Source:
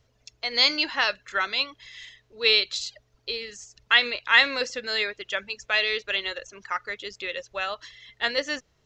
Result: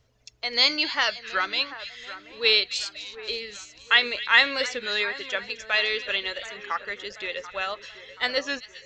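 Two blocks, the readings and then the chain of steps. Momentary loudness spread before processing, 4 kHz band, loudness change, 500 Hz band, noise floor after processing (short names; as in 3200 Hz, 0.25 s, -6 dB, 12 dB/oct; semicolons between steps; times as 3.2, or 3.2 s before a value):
17 LU, +0.5 dB, 0.0 dB, 0.0 dB, -52 dBFS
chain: on a send: split-band echo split 2000 Hz, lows 0.731 s, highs 0.258 s, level -14 dB; on the sum: record warp 33 1/3 rpm, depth 100 cents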